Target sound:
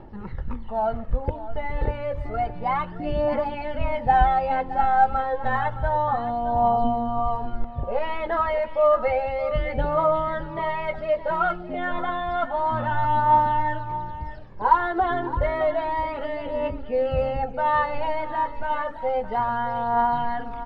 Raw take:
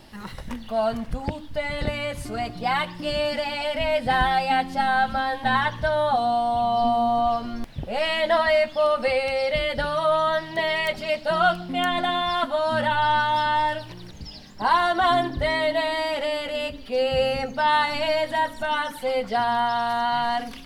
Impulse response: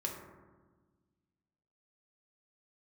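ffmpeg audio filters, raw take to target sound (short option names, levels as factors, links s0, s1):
-af "lowpass=1200,aecho=1:1:2.3:0.35,aphaser=in_gain=1:out_gain=1:delay=2.5:decay=0.52:speed=0.3:type=triangular,aecho=1:1:617:0.211"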